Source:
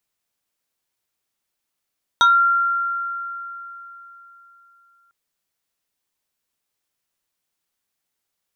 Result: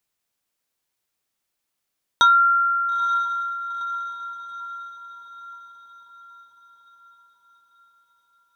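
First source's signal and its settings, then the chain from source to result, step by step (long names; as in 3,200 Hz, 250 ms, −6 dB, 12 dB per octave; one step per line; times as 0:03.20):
two-operator FM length 2.90 s, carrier 1,380 Hz, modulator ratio 1.7, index 1.2, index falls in 0.24 s exponential, decay 3.63 s, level −9.5 dB
dynamic equaliser 720 Hz, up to −5 dB, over −43 dBFS, Q 3.4
feedback delay with all-pass diffusion 921 ms, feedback 52%, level −13 dB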